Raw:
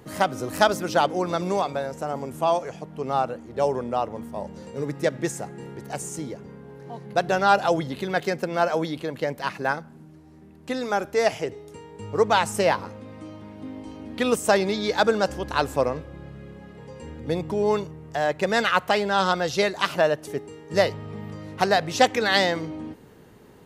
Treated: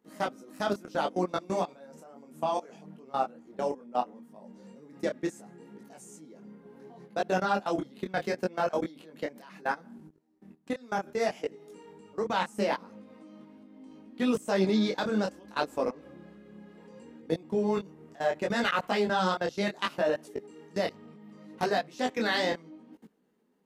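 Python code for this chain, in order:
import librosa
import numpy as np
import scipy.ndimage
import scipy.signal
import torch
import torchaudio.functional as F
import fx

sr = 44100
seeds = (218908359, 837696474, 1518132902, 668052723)

y = fx.low_shelf_res(x, sr, hz=150.0, db=-11.0, q=3.0)
y = fx.level_steps(y, sr, step_db=23)
y = fx.detune_double(y, sr, cents=24)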